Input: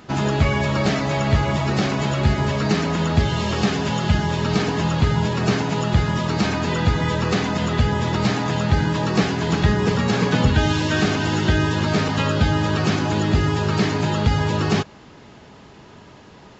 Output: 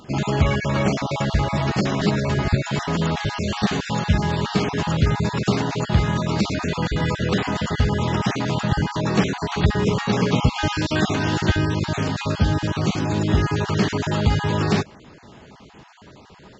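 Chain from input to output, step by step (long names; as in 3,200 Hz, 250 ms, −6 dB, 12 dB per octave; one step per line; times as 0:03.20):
time-frequency cells dropped at random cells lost 27%
0:02.01–0:02.79: reverse
0:11.56–0:13.29: parametric band 1,400 Hz −4 dB 2.9 octaves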